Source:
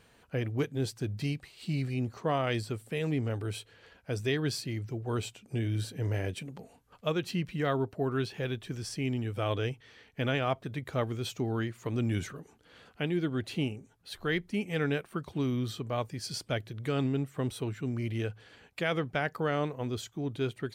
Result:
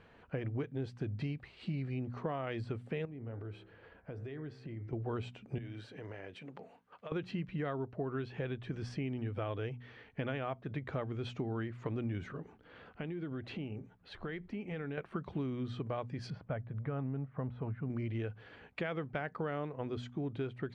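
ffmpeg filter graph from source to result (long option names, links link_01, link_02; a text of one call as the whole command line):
ffmpeg -i in.wav -filter_complex "[0:a]asettb=1/sr,asplit=3[link_01][link_02][link_03];[link_01]atrim=end=3.054[link_04];[link_02]atrim=start=3.05:end=4.93,asetpts=PTS-STARTPTS,afade=type=in:duration=0.004:curve=qsin,afade=type=out:start_time=1.876:duration=0.004:curve=qsin,bandreject=frequency=64.65:width_type=h:width=4,bandreject=frequency=129.3:width_type=h:width=4,bandreject=frequency=193.95:width_type=h:width=4,bandreject=frequency=258.6:width_type=h:width=4,bandreject=frequency=323.25:width_type=h:width=4,bandreject=frequency=387.9:width_type=h:width=4,bandreject=frequency=452.55:width_type=h:width=4,bandreject=frequency=517.2:width_type=h:width=4,bandreject=frequency=581.85:width_type=h:width=4,bandreject=frequency=646.5:width_type=h:width=4,bandreject=frequency=711.15:width_type=h:width=4,bandreject=frequency=775.8:width_type=h:width=4,bandreject=frequency=840.45:width_type=h:width=4,bandreject=frequency=905.1:width_type=h:width=4,bandreject=frequency=969.75:width_type=h:width=4,bandreject=frequency=1034.4:width_type=h:width=4,bandreject=frequency=1099.05:width_type=h:width=4,bandreject=frequency=1163.7:width_type=h:width=4,bandreject=frequency=1228.35:width_type=h:width=4,bandreject=frequency=1293:width_type=h:width=4,bandreject=frequency=1357.65:width_type=h:width=4,bandreject=frequency=1422.3:width_type=h:width=4,bandreject=frequency=1486.95:width_type=h:width=4,bandreject=frequency=1551.6:width_type=h:width=4,bandreject=frequency=1616.25:width_type=h:width=4,bandreject=frequency=1680.9:width_type=h:width=4,bandreject=frequency=1745.55:width_type=h:width=4,bandreject=frequency=1810.2:width_type=h:width=4,bandreject=frequency=1874.85:width_type=h:width=4,bandreject=frequency=1939.5:width_type=h:width=4,bandreject=frequency=2004.15:width_type=h:width=4,bandreject=frequency=2068.8:width_type=h:width=4,bandreject=frequency=2133.45:width_type=h:width=4,bandreject=frequency=2198.1:width_type=h:width=4,bandreject=frequency=2262.75:width_type=h:width=4,acompressor=threshold=-42dB:ratio=10:attack=3.2:release=140:knee=1:detection=peak,highshelf=frequency=2300:gain=-9.5[link_05];[link_03]atrim=start=4.926[link_06];[link_04][link_05]acrossfade=duration=0.004:curve1=hsin:curve2=qsin[link_07];[link_07][link_06]acrossfade=duration=0.004:curve1=qsin:curve2=hsin,asettb=1/sr,asplit=3[link_08][link_09][link_10];[link_08]atrim=end=5.584[link_11];[link_09]atrim=start=5.58:end=7.12,asetpts=PTS-STARTPTS,afade=type=in:duration=0.004:curve=qsin,afade=type=out:start_time=1.536:duration=0.004:curve=qsin,highpass=frequency=540:poles=1,acompressor=threshold=-43dB:ratio=12:attack=3.2:release=140:knee=1:detection=peak[link_12];[link_10]atrim=start=7.116[link_13];[link_11][link_12]acrossfade=duration=0.004:curve1=hsin:curve2=qsin[link_14];[link_14][link_13]acrossfade=duration=0.004:curve1=qsin:curve2=hsin,asettb=1/sr,asplit=3[link_15][link_16][link_17];[link_15]atrim=end=12.404[link_18];[link_16]atrim=start=12.4:end=14.98,asetpts=PTS-STARTPTS,afade=type=in:duration=0.004:curve=qsin,afade=type=out:start_time=2.576:duration=0.004:curve=qsin,highshelf=frequency=8600:gain=-9.5,acompressor=threshold=-38dB:ratio=10:attack=3.2:release=140:knee=1:detection=peak[link_19];[link_17]atrim=start=14.976[link_20];[link_18][link_19]acrossfade=duration=0.004:curve1=hsin:curve2=qsin[link_21];[link_21][link_20]acrossfade=duration=0.004:curve1=qsin:curve2=hsin,asettb=1/sr,asplit=3[link_22][link_23][link_24];[link_22]atrim=end=16.304[link_25];[link_23]atrim=start=16.3:end=17.9,asetpts=PTS-STARTPTS,afade=type=in:duration=0.004:curve=qsin,afade=type=out:start_time=1.596:duration=0.004:curve=qsin,lowpass=1300,equalizer=frequency=350:width_type=o:width=0.65:gain=-11[link_26];[link_24]atrim=start=17.896[link_27];[link_25][link_26]acrossfade=duration=0.004:curve1=hsin:curve2=qsin[link_28];[link_28][link_27]acrossfade=duration=0.004:curve1=qsin:curve2=hsin,lowpass=2300,bandreject=frequency=60.91:width_type=h:width=4,bandreject=frequency=121.82:width_type=h:width=4,bandreject=frequency=182.73:width_type=h:width=4,bandreject=frequency=243.64:width_type=h:width=4,acompressor=threshold=-37dB:ratio=6,volume=2.5dB" out.wav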